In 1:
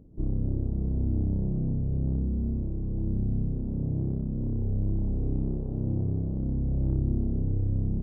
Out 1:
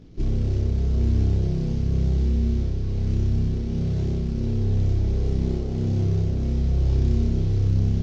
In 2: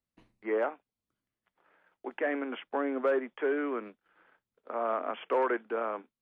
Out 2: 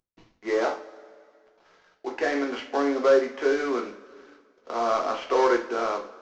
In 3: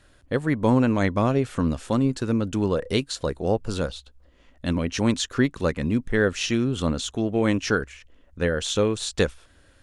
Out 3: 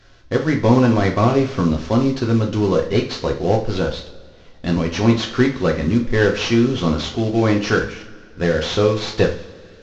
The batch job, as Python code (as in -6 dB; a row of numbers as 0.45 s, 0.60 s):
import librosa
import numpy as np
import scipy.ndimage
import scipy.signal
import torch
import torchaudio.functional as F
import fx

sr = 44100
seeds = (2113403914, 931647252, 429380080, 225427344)

y = fx.cvsd(x, sr, bps=32000)
y = fx.rev_double_slope(y, sr, seeds[0], early_s=0.36, late_s=2.1, knee_db=-20, drr_db=1.0)
y = y * librosa.db_to_amplitude(4.0)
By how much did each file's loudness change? +6.0 LU, +7.0 LU, +6.0 LU